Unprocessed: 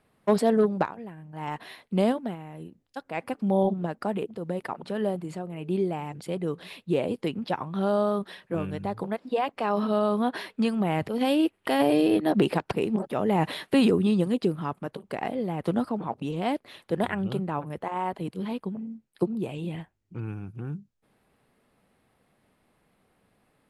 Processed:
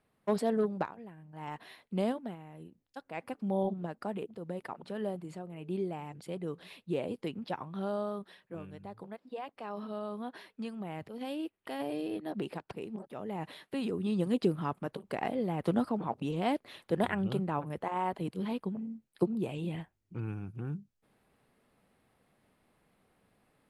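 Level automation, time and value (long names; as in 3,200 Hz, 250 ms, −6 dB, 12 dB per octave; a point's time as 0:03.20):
0:07.60 −8 dB
0:08.69 −14.5 dB
0:13.84 −14.5 dB
0:14.37 −3 dB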